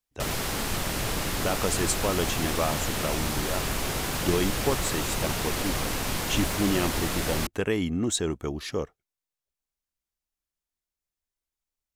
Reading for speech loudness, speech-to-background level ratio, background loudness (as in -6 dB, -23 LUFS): -30.0 LUFS, -1.0 dB, -29.0 LUFS